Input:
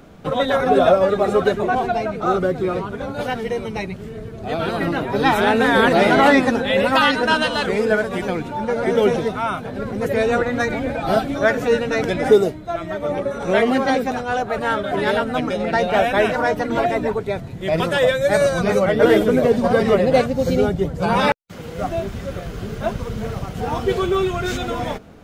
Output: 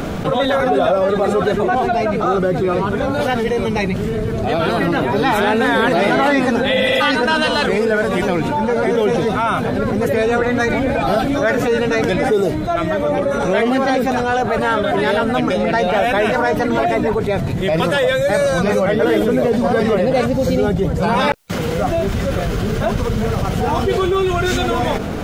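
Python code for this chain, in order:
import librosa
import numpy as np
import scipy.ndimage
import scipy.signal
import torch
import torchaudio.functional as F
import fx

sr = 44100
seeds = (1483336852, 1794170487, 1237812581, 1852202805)

y = fx.spec_repair(x, sr, seeds[0], start_s=6.78, length_s=0.2, low_hz=220.0, high_hz=4800.0, source='before')
y = fx.env_flatten(y, sr, amount_pct=70)
y = y * 10.0 ** (-5.0 / 20.0)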